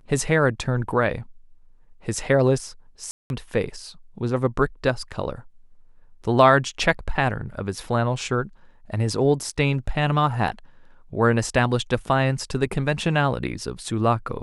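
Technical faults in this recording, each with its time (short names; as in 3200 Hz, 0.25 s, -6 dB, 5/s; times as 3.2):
3.11–3.3 gap 0.191 s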